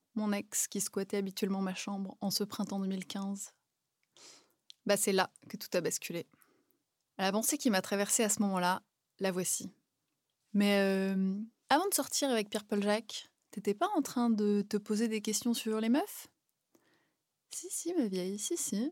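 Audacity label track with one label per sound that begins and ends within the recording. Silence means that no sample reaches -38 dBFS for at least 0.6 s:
4.700000	6.210000	sound
7.190000	9.670000	sound
10.550000	16.210000	sound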